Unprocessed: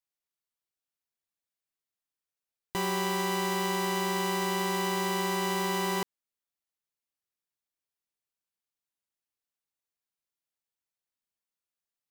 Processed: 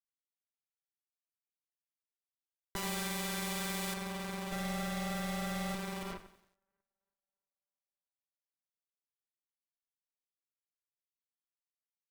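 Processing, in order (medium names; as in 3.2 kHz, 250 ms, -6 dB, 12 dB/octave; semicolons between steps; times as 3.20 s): half-wave rectifier; reverberation RT60 0.50 s, pre-delay 71 ms, DRR -2 dB; compression 12:1, threshold -36 dBFS, peak gain reduction 11.5 dB; 2.76–3.94 s: treble shelf 2.2 kHz +11.5 dB; 4.52–5.75 s: comb 1.5 ms, depth 99%; band-passed feedback delay 326 ms, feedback 66%, band-pass 780 Hz, level -16 dB; Chebyshev shaper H 3 -24 dB, 5 -34 dB, 7 -18 dB, 8 -26 dB, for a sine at -30.5 dBFS; bass shelf 260 Hz +4.5 dB; bit-crushed delay 91 ms, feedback 55%, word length 10-bit, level -14.5 dB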